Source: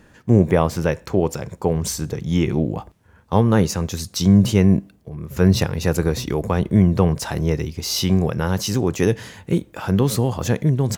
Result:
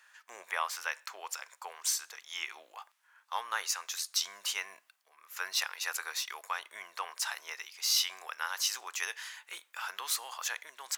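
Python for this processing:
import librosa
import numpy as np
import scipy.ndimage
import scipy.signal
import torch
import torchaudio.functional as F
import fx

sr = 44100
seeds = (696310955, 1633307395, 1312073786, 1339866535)

y = fx.add_hum(x, sr, base_hz=50, snr_db=23)
y = scipy.signal.sosfilt(scipy.signal.butter(4, 1100.0, 'highpass', fs=sr, output='sos'), y)
y = y * 10.0 ** (-4.0 / 20.0)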